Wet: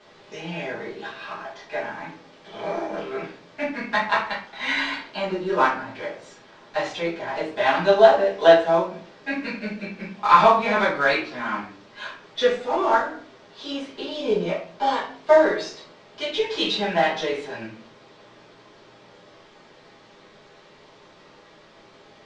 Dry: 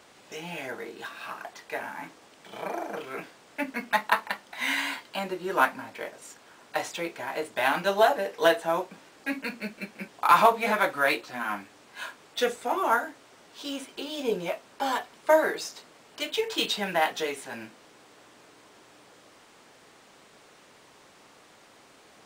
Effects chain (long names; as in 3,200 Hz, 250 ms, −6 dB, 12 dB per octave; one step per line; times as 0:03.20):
one scale factor per block 5 bits
low-pass filter 5,600 Hz 24 dB per octave
rectangular room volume 39 cubic metres, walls mixed, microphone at 1.4 metres
level −4.5 dB